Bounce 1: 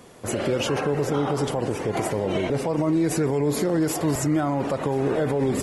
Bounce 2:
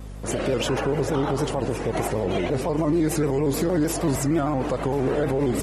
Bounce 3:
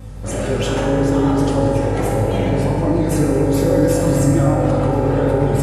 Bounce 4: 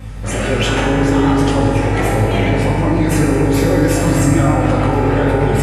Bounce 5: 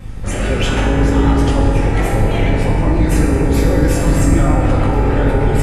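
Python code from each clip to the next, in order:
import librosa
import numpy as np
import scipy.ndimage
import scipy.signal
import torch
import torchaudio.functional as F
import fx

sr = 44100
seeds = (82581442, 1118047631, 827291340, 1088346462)

y1 = fx.add_hum(x, sr, base_hz=50, snr_db=13)
y1 = fx.vibrato_shape(y1, sr, shape='square', rate_hz=6.5, depth_cents=100.0)
y2 = fx.peak_eq(y1, sr, hz=100.0, db=7.5, octaves=0.58)
y2 = fx.rev_fdn(y2, sr, rt60_s=2.8, lf_ratio=1.25, hf_ratio=0.45, size_ms=11.0, drr_db=-4.5)
y2 = F.gain(torch.from_numpy(y2), -1.0).numpy()
y3 = fx.peak_eq(y2, sr, hz=2200.0, db=9.0, octaves=1.4)
y3 = fx.doubler(y3, sr, ms=19.0, db=-7.0)
y3 = F.gain(torch.from_numpy(y3), 1.5).numpy()
y4 = fx.octave_divider(y3, sr, octaves=2, level_db=3.0)
y4 = F.gain(torch.from_numpy(y4), -2.5).numpy()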